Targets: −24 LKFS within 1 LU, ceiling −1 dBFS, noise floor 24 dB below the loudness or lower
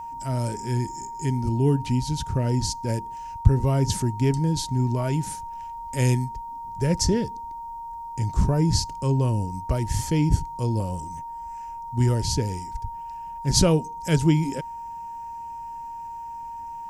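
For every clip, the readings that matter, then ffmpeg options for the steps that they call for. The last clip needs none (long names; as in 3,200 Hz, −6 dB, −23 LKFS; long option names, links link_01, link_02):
interfering tone 930 Hz; level of the tone −33 dBFS; integrated loudness −24.5 LKFS; sample peak −3.5 dBFS; target loudness −24.0 LKFS
→ -af "bandreject=frequency=930:width=30"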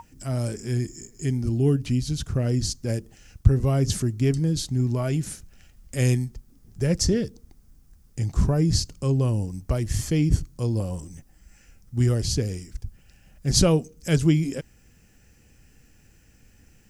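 interfering tone none found; integrated loudness −25.0 LKFS; sample peak −3.5 dBFS; target loudness −24.0 LKFS
→ -af "volume=1dB"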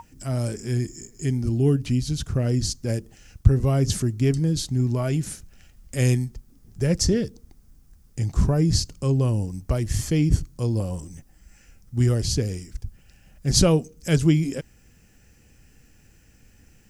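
integrated loudness −24.0 LKFS; sample peak −2.5 dBFS; background noise floor −56 dBFS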